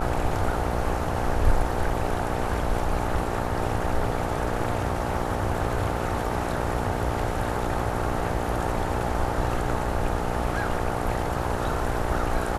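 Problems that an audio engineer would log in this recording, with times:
buzz 60 Hz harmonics 15 -30 dBFS

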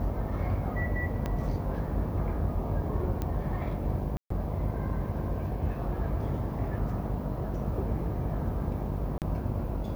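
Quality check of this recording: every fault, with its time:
buzz 50 Hz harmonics 20 -35 dBFS
1.26 s: pop -19 dBFS
3.22 s: pop -19 dBFS
4.17–4.30 s: dropout 134 ms
9.18–9.22 s: dropout 38 ms

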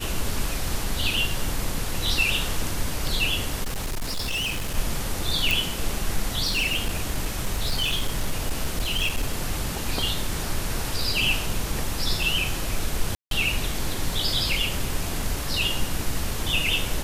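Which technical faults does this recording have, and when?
3.63–4.77 s: clipped -24 dBFS
5.51 s: pop
6.45–9.35 s: clipped -19 dBFS
13.15–13.31 s: dropout 162 ms

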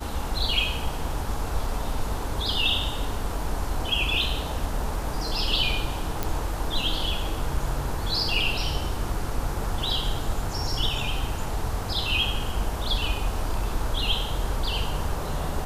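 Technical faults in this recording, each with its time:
6.23 s: pop

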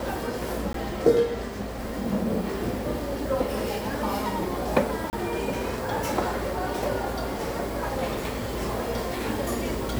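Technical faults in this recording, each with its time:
0.73–0.74 s: dropout 13 ms
5.10–5.13 s: dropout 29 ms

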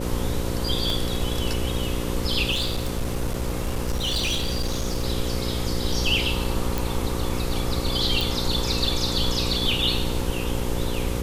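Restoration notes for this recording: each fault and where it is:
buzz 60 Hz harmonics 9 -29 dBFS
0.90 s: dropout 2.6 ms
2.51–5.03 s: clipped -20.5 dBFS
6.78 s: pop
8.21 s: pop

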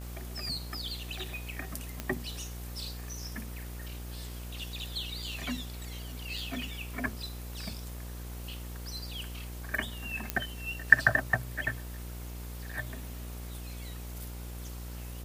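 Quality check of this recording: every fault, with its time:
buzz 60 Hz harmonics 24 -41 dBFS
2.00 s: pop -18 dBFS
10.30 s: pop -12 dBFS

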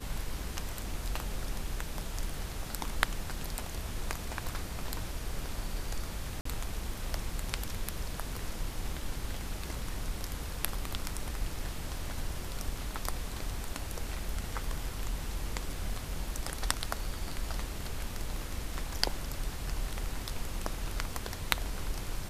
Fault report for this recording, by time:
6.41–6.45 s: dropout 44 ms

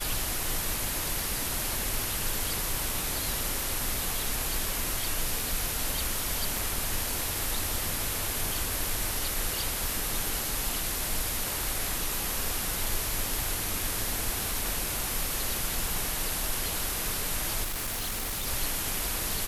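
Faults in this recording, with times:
6.57 s: pop
17.63–18.48 s: clipped -29 dBFS

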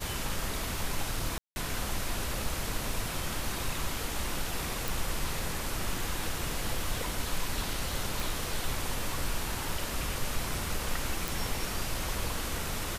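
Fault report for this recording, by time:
1.38–1.56 s: dropout 180 ms
4.88 s: pop
8.20 s: pop
11.28 s: pop

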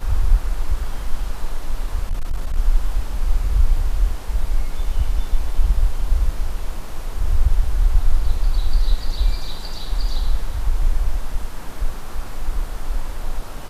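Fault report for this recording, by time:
2.09–2.57 s: clipped -16.5 dBFS

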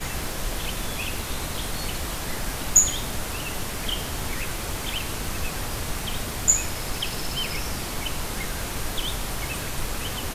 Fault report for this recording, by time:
crackle 100 per s -34 dBFS

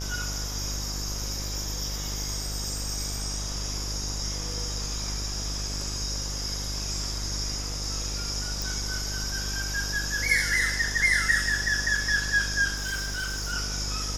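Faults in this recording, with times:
buzz 50 Hz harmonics 35 -34 dBFS
8.62 s: pop
12.75–13.54 s: clipped -27 dBFS

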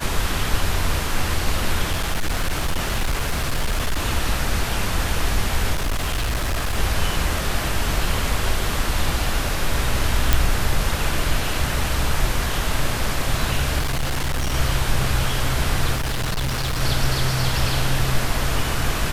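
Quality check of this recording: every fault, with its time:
1.90–4.06 s: clipped -17 dBFS
5.73–6.78 s: clipped -18.5 dBFS
10.33 s: pop
13.79–14.55 s: clipped -18.5 dBFS
15.95–16.81 s: clipped -20 dBFS

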